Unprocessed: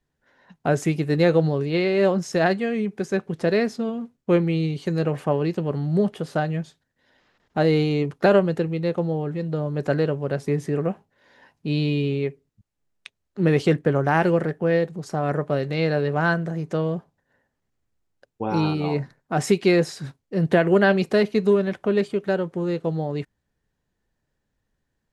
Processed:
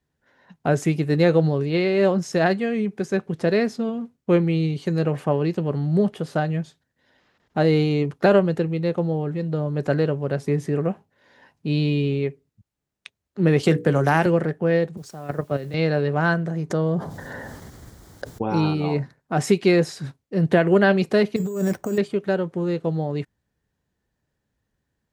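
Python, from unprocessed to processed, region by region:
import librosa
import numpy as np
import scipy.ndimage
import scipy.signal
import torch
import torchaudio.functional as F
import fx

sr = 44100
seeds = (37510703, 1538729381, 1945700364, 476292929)

y = fx.chain(x, sr, fx.high_shelf(hz=5700.0, db=11.0),
    fx.hum_notches(base_hz=60, count=8),
    fx.band_squash(depth_pct=70), at=(13.63, 14.26))
y = fx.chain(y, sr, fx.level_steps(step_db=11),
    fx.quant_dither(seeds[0], bits=10, dither='triangular'),
    fx.band_widen(depth_pct=40), at=(14.97, 15.74))
y = fx.chain(y, sr, fx.peak_eq(hz=2600.0, db=-12.0, octaves=0.37),
    fx.env_flatten(amount_pct=70), at=(16.7, 18.42))
y = fx.chain(y, sr, fx.high_shelf(hz=2400.0, db=-9.5),
    fx.over_compress(threshold_db=-25.0, ratio=-1.0),
    fx.resample_bad(factor=6, down='none', up='hold'), at=(21.36, 21.98))
y = scipy.signal.sosfilt(scipy.signal.butter(2, 49.0, 'highpass', fs=sr, output='sos'), y)
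y = fx.low_shelf(y, sr, hz=190.0, db=3.0)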